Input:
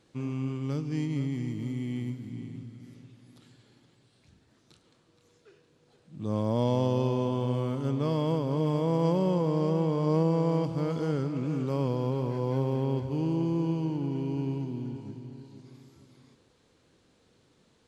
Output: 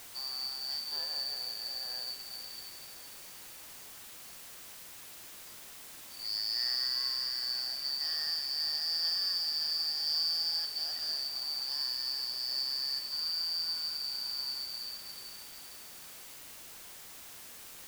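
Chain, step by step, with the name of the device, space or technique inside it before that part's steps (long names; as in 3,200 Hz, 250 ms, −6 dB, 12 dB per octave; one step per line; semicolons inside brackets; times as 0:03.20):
split-band scrambled radio (band-splitting scrambler in four parts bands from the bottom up 2341; band-pass filter 390–3,400 Hz; white noise bed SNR 12 dB)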